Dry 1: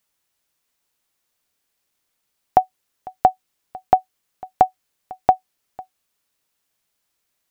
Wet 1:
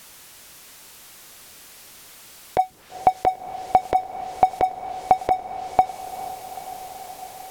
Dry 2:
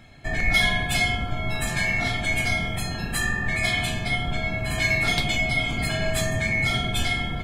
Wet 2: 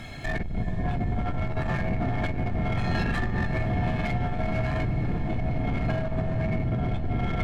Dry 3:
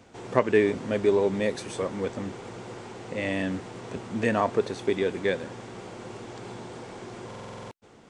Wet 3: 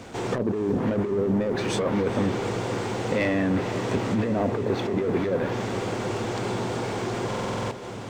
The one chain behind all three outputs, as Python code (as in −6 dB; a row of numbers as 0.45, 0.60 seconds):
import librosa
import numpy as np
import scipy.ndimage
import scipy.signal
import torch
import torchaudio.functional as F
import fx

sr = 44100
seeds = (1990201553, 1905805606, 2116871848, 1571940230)

y = fx.env_lowpass_down(x, sr, base_hz=330.0, full_db=-18.5)
y = fx.leveller(y, sr, passes=1)
y = fx.over_compress(y, sr, threshold_db=-27.0, ratio=-1.0)
y = fx.power_curve(y, sr, exponent=0.7)
y = fx.echo_diffused(y, sr, ms=451, feedback_pct=77, wet_db=-13)
y = y * 10.0 ** (-26 / 20.0) / np.sqrt(np.mean(np.square(y)))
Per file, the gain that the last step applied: +8.5, −2.5, −0.5 decibels